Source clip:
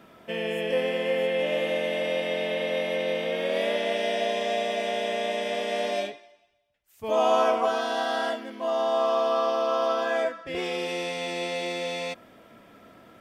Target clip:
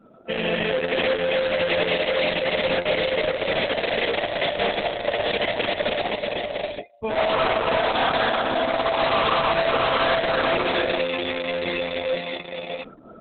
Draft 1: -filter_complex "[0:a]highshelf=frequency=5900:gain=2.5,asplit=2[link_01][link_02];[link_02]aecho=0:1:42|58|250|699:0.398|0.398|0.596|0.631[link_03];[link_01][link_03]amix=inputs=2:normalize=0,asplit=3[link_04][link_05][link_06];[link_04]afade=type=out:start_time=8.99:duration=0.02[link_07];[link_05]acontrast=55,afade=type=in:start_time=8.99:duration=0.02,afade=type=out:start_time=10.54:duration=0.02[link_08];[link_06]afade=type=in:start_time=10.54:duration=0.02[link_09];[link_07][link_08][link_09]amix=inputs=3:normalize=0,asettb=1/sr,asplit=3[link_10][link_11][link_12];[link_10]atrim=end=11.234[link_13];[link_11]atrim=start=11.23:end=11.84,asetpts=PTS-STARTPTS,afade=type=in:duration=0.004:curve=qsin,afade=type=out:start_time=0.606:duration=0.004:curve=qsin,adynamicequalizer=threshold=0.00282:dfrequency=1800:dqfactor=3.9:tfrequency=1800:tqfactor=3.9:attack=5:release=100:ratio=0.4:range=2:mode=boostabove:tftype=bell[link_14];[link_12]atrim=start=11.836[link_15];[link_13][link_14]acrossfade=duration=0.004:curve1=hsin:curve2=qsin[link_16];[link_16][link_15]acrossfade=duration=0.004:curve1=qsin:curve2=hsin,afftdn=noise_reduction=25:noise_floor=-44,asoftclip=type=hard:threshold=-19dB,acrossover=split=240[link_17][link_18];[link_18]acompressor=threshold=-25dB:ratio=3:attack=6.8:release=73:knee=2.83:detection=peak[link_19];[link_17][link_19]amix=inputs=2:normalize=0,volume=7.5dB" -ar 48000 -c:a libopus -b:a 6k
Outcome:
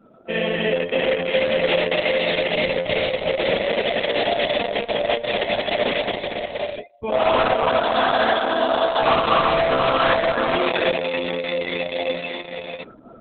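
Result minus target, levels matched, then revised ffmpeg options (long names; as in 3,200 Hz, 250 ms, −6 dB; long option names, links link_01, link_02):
hard clipping: distortion −5 dB
-filter_complex "[0:a]highshelf=frequency=5900:gain=2.5,asplit=2[link_01][link_02];[link_02]aecho=0:1:42|58|250|699:0.398|0.398|0.596|0.631[link_03];[link_01][link_03]amix=inputs=2:normalize=0,asplit=3[link_04][link_05][link_06];[link_04]afade=type=out:start_time=8.99:duration=0.02[link_07];[link_05]acontrast=55,afade=type=in:start_time=8.99:duration=0.02,afade=type=out:start_time=10.54:duration=0.02[link_08];[link_06]afade=type=in:start_time=10.54:duration=0.02[link_09];[link_07][link_08][link_09]amix=inputs=3:normalize=0,asettb=1/sr,asplit=3[link_10][link_11][link_12];[link_10]atrim=end=11.234[link_13];[link_11]atrim=start=11.23:end=11.84,asetpts=PTS-STARTPTS,afade=type=in:duration=0.004:curve=qsin,afade=type=out:start_time=0.606:duration=0.004:curve=qsin,adynamicequalizer=threshold=0.00282:dfrequency=1800:dqfactor=3.9:tfrequency=1800:tqfactor=3.9:attack=5:release=100:ratio=0.4:range=2:mode=boostabove:tftype=bell[link_14];[link_12]atrim=start=11.836[link_15];[link_13][link_14]acrossfade=duration=0.004:curve1=hsin:curve2=qsin[link_16];[link_16][link_15]acrossfade=duration=0.004:curve1=qsin:curve2=hsin,afftdn=noise_reduction=25:noise_floor=-44,asoftclip=type=hard:threshold=-26.5dB,acrossover=split=240[link_17][link_18];[link_18]acompressor=threshold=-25dB:ratio=3:attack=6.8:release=73:knee=2.83:detection=peak[link_19];[link_17][link_19]amix=inputs=2:normalize=0,volume=7.5dB" -ar 48000 -c:a libopus -b:a 6k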